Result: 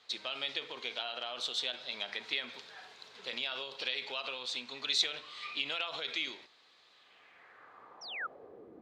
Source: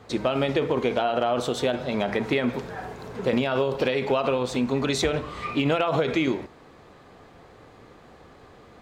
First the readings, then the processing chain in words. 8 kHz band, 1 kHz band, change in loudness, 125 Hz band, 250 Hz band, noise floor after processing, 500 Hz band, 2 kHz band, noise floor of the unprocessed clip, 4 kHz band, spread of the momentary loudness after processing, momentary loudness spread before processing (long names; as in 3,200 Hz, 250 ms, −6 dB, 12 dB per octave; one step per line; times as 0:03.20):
−7.0 dB, −16.5 dB, −10.5 dB, below −30 dB, −28.0 dB, −64 dBFS, −22.5 dB, −7.0 dB, −51 dBFS, +0.5 dB, 17 LU, 7 LU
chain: sound drawn into the spectrogram fall, 0:08.01–0:08.27, 1,200–6,000 Hz −26 dBFS
band-pass filter sweep 3,900 Hz → 330 Hz, 0:06.93–0:08.74
level +2.5 dB